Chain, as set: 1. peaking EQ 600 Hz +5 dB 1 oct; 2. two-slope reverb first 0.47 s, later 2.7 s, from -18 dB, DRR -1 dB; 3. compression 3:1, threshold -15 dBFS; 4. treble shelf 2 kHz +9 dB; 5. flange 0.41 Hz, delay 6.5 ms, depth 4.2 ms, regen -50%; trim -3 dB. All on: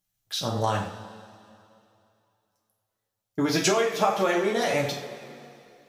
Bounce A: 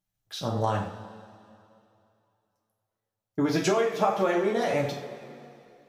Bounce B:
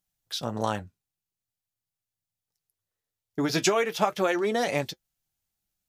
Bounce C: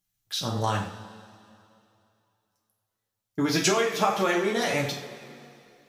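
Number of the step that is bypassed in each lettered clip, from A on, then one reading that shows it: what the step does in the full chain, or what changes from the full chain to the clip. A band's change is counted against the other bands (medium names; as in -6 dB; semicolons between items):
4, 8 kHz band -7.0 dB; 2, momentary loudness spread change -7 LU; 1, 500 Hz band -2.5 dB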